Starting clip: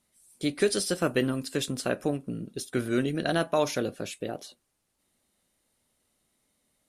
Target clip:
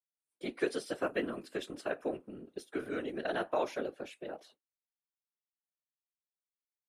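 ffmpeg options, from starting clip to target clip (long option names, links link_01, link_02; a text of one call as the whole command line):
ffmpeg -i in.wav -filter_complex "[0:a]afftfilt=real='hypot(re,im)*cos(2*PI*random(0))':imag='hypot(re,im)*sin(2*PI*random(1))':win_size=512:overlap=0.75,agate=range=-33dB:threshold=-53dB:ratio=3:detection=peak,acrossover=split=260 3000:gain=0.141 1 0.224[link_01][link_02][link_03];[link_01][link_02][link_03]amix=inputs=3:normalize=0" out.wav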